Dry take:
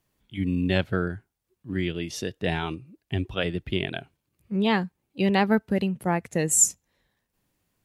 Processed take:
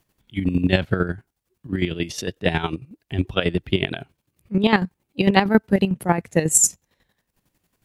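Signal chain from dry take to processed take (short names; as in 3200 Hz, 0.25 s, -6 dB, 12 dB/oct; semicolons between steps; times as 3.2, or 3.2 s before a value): chopper 11 Hz, depth 65%, duty 35%; gain +8.5 dB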